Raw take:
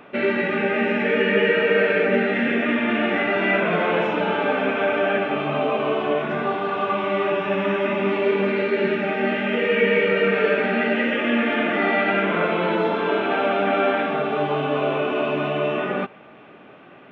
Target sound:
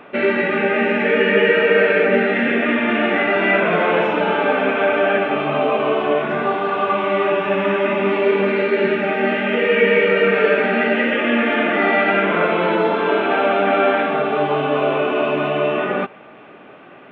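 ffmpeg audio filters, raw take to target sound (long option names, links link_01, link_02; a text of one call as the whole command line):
ffmpeg -i in.wav -af "bass=frequency=250:gain=-4,treble=frequency=4000:gain=-6,volume=4.5dB" out.wav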